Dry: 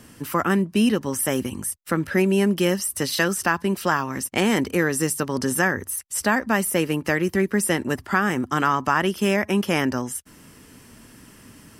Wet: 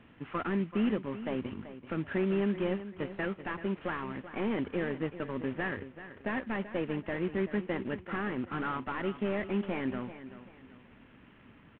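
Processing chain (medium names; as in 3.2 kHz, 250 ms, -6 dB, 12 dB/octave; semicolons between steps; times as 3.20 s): CVSD coder 16 kbps; feedback delay 384 ms, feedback 31%, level -13 dB; trim -9 dB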